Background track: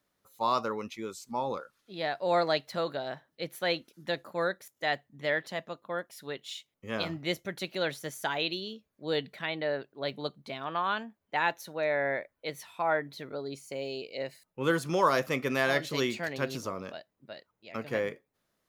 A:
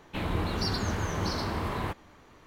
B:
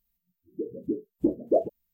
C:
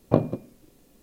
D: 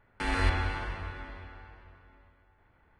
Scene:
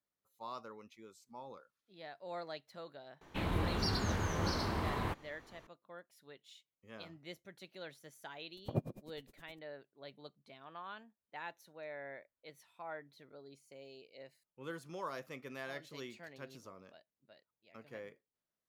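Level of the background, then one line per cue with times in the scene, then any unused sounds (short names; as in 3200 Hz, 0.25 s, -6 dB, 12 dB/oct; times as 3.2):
background track -17.5 dB
3.21 add A -4.5 dB
8.57 add C -0.5 dB + dB-linear tremolo 9.7 Hz, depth 37 dB
not used: B, D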